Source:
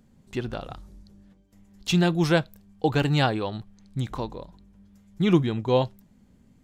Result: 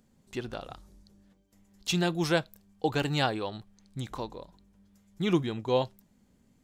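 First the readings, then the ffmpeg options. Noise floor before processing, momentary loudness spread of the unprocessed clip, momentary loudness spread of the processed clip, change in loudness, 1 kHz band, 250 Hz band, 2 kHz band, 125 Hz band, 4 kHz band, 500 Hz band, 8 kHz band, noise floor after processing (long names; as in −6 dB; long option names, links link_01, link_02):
−59 dBFS, 17 LU, 18 LU, −5.5 dB, −4.0 dB, −6.5 dB, −4.0 dB, −8.5 dB, −2.5 dB, −4.5 dB, −0.5 dB, −67 dBFS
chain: -af "bass=frequency=250:gain=-5,treble=frequency=4000:gain=4,volume=-4dB"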